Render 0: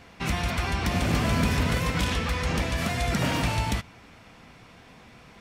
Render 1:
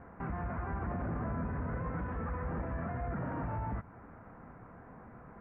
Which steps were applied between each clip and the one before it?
in parallel at +2 dB: downward compressor, threshold −34 dBFS, peak gain reduction 14 dB
on the sum: brickwall limiter −20 dBFS, peak gain reduction 10.5 dB
Butterworth low-pass 1,600 Hz 36 dB per octave
level −7.5 dB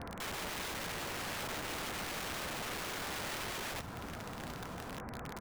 brickwall limiter −37 dBFS, peak gain reduction 9.5 dB
wrap-around overflow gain 43.5 dB
single-tap delay 1,169 ms −13 dB
level +8 dB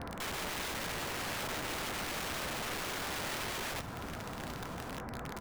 convolution reverb RT60 0.60 s, pre-delay 3 ms, DRR 16.5 dB
level +2 dB

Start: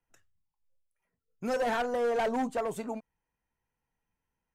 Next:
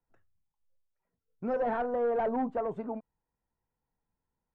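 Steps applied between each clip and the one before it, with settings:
low-pass filter 1,200 Hz 12 dB per octave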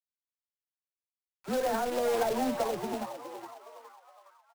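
all-pass dispersion lows, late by 64 ms, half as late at 600 Hz
log-companded quantiser 4 bits
echo with shifted repeats 415 ms, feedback 44%, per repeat +120 Hz, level −9.5 dB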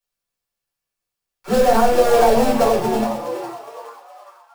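rectangular room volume 150 cubic metres, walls furnished, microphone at 4.3 metres
level +4.5 dB

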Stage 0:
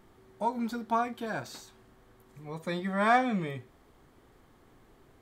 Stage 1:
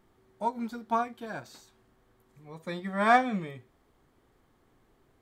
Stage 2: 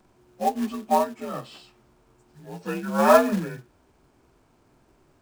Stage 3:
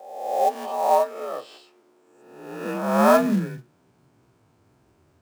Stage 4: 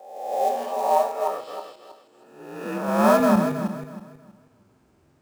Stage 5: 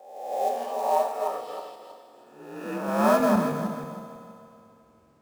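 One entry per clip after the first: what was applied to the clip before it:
expander for the loud parts 1.5 to 1, over −39 dBFS; level +3 dB
partials spread apart or drawn together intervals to 87%; floating-point word with a short mantissa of 2 bits; level +8 dB
peak hold with a rise ahead of every peak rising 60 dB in 0.99 s; high-pass filter sweep 520 Hz → 84 Hz, 0:01.12–0:04.84; level −4 dB
feedback delay that plays each chunk backwards 160 ms, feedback 51%, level −4 dB; level −2 dB
feedback delay network reverb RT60 2.9 s, high-frequency decay 0.95×, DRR 8.5 dB; level −3.5 dB

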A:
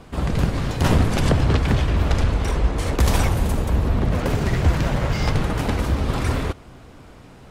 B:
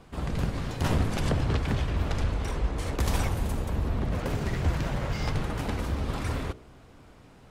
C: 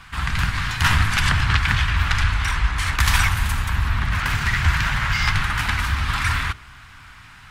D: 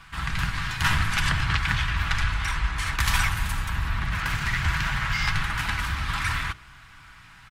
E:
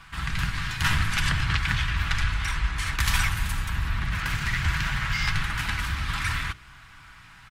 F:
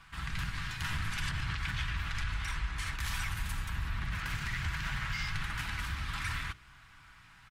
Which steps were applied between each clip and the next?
hum removal 61.73 Hz, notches 11; level −8 dB
drawn EQ curve 100 Hz 0 dB, 520 Hz −21 dB, 960 Hz +3 dB, 1,600 Hz +12 dB, 6,700 Hz +4 dB; level +7.5 dB
comb filter 6.1 ms, depth 30%; level −5 dB
dynamic equaliser 860 Hz, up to −4 dB, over −43 dBFS, Q 0.93
brickwall limiter −17 dBFS, peak gain reduction 8 dB; level −8 dB

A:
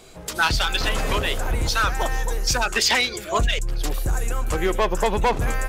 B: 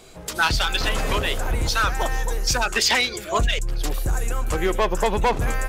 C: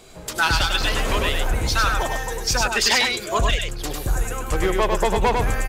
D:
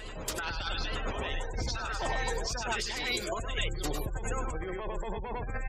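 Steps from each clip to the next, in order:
no processing that can be heard
single-tap delay 100 ms −4 dB
gate on every frequency bin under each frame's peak −25 dB strong; compressor whose output falls as the input rises −25 dBFS, ratio −1; backwards echo 872 ms −9 dB; level −8.5 dB

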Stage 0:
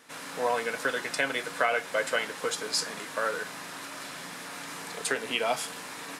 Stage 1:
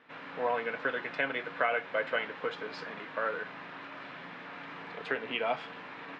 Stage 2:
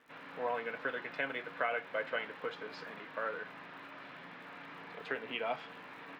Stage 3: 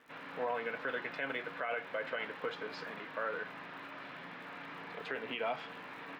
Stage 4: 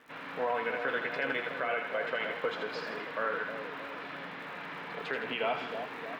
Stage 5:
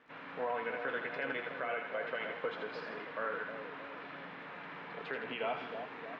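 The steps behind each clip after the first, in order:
low-pass filter 3,000 Hz 24 dB per octave; level −3 dB
surface crackle 110 per second −51 dBFS; level −5 dB
brickwall limiter −29 dBFS, peak gain reduction 8.5 dB; level +2.5 dB
echo with a time of its own for lows and highs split 810 Hz, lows 312 ms, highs 81 ms, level −6 dB; level +4 dB
high-frequency loss of the air 150 metres; level −4 dB

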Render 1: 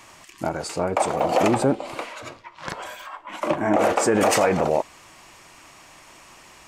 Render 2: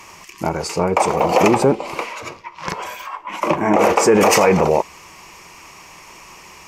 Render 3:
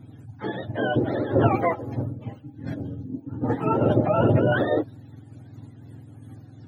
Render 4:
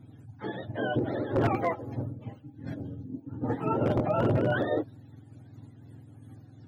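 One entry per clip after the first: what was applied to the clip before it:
EQ curve with evenly spaced ripples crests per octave 0.8, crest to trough 7 dB; level +5.5 dB
frequency axis turned over on the octave scale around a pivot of 530 Hz; amplitude modulation by smooth noise, depth 60%; level −2.5 dB
wave folding −12 dBFS; level −5.5 dB

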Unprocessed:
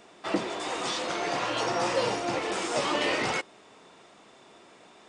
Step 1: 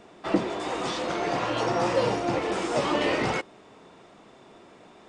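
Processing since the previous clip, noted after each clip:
spectral tilt −2 dB per octave
level +1.5 dB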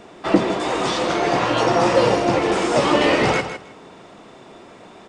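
repeating echo 158 ms, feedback 17%, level −10 dB
level +8 dB

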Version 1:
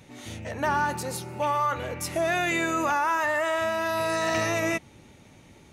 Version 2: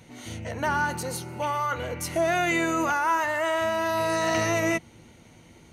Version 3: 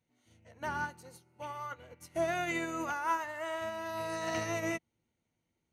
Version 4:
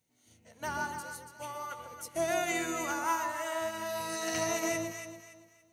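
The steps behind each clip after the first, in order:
EQ curve with evenly spaced ripples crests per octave 1.9, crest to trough 6 dB
expander for the loud parts 2.5 to 1, over −38 dBFS; level −6 dB
bass and treble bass −1 dB, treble +11 dB; delay that swaps between a low-pass and a high-pass 142 ms, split 1,000 Hz, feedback 55%, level −2.5 dB

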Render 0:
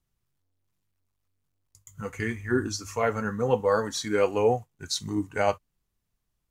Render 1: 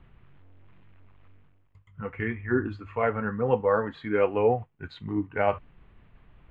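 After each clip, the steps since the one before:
inverse Chebyshev low-pass filter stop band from 5,300 Hz, stop band 40 dB
reversed playback
upward compression, threshold −32 dBFS
reversed playback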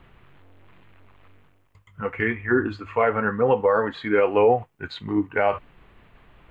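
bass and treble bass −8 dB, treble +4 dB
brickwall limiter −17.5 dBFS, peak gain reduction 7 dB
level +8.5 dB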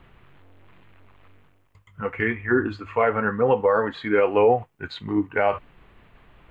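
no processing that can be heard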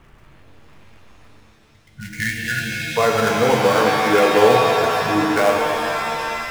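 gap after every zero crossing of 0.1 ms
time-frequency box erased 0:01.74–0:02.97, 220–1,400 Hz
reverb with rising layers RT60 3 s, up +7 semitones, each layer −2 dB, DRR 1.5 dB
level +2 dB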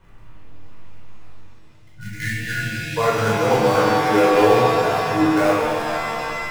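rectangular room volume 680 cubic metres, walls furnished, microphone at 4.9 metres
level −9 dB

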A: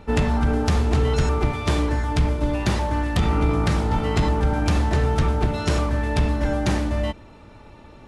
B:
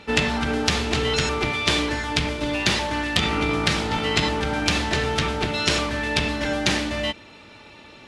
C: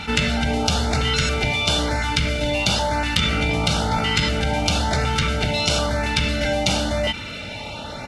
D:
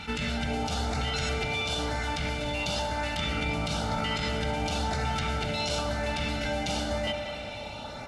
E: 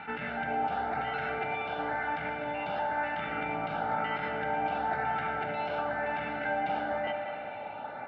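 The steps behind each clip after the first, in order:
meter weighting curve D
comb filter 1.4 ms, depth 62%; auto-filter notch saw up 0.99 Hz 520–3,400 Hz; envelope flattener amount 50%; level −1 dB
brickwall limiter −12 dBFS, peak gain reduction 10 dB; feedback echo with a band-pass in the loop 187 ms, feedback 76%, band-pass 770 Hz, level −6 dB; convolution reverb RT60 2.6 s, pre-delay 30 ms, DRR 11 dB; level −8.5 dB
loudspeaker in its box 200–2,300 Hz, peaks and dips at 220 Hz −4 dB, 780 Hz +9 dB, 1,600 Hz +8 dB; level −3 dB

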